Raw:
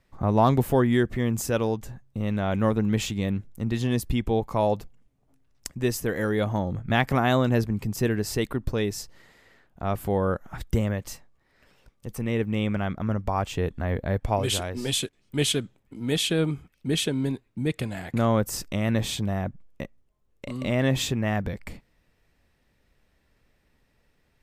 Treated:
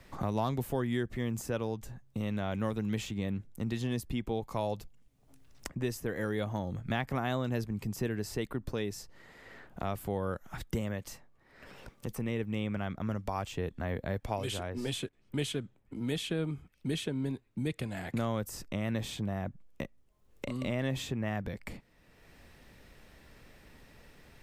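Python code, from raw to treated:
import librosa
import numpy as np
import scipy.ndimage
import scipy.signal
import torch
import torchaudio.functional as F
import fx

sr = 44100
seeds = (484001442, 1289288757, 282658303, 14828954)

y = fx.band_squash(x, sr, depth_pct=70)
y = F.gain(torch.from_numpy(y), -9.0).numpy()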